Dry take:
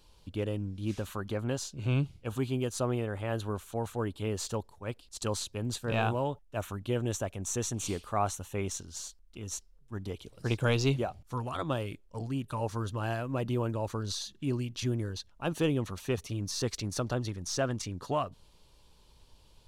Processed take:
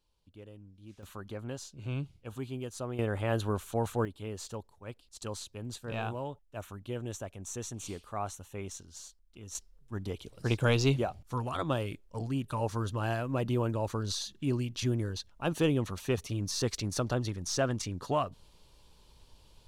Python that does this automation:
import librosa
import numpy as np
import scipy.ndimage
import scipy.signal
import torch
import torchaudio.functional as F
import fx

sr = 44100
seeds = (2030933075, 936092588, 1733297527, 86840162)

y = fx.gain(x, sr, db=fx.steps((0.0, -17.0), (1.03, -7.0), (2.99, 3.0), (4.05, -6.5), (9.55, 1.0)))